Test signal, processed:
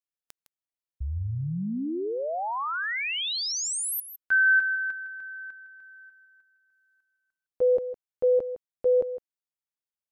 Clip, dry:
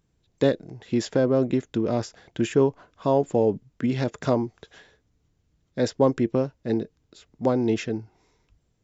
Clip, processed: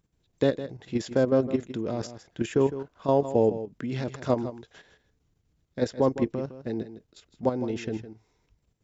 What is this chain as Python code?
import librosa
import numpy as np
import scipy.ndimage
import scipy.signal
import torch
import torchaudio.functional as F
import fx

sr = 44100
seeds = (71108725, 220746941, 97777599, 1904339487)

p1 = fx.level_steps(x, sr, step_db=10)
y = p1 + fx.echo_single(p1, sr, ms=159, db=-12.5, dry=0)